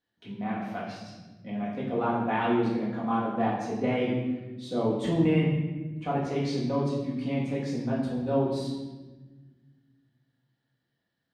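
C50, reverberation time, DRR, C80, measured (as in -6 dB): 2.0 dB, 1.3 s, -6.5 dB, 4.5 dB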